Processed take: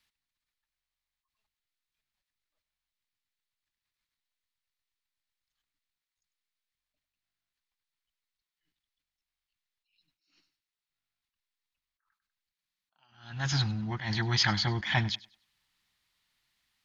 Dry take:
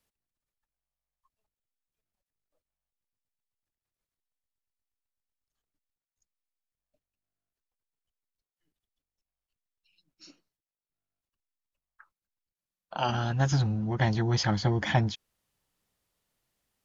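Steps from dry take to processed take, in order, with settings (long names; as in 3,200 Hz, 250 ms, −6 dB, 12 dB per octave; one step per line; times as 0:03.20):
graphic EQ with 10 bands 500 Hz −9 dB, 1,000 Hz +4 dB, 2,000 Hz +9 dB, 4,000 Hz +11 dB
feedback echo with a high-pass in the loop 98 ms, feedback 26%, high-pass 150 Hz, level −21 dB
level that may rise only so fast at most 110 dB per second
level −3 dB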